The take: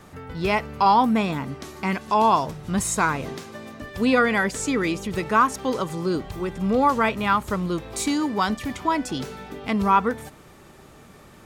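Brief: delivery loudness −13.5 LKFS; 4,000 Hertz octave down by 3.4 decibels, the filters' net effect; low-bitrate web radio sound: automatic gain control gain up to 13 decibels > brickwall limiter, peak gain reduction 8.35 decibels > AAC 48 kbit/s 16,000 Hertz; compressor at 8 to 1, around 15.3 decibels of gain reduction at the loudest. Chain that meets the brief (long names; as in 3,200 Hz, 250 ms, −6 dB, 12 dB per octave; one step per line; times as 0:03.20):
parametric band 4,000 Hz −4.5 dB
downward compressor 8 to 1, threshold −30 dBFS
automatic gain control gain up to 13 dB
brickwall limiter −27 dBFS
level +23 dB
AAC 48 kbit/s 16,000 Hz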